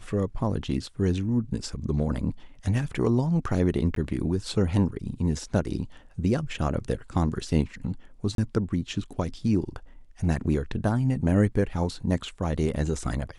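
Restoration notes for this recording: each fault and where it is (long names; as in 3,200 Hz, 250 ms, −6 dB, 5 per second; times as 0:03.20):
0:03.95–0:03.96: drop-out 13 ms
0:08.35–0:08.38: drop-out 32 ms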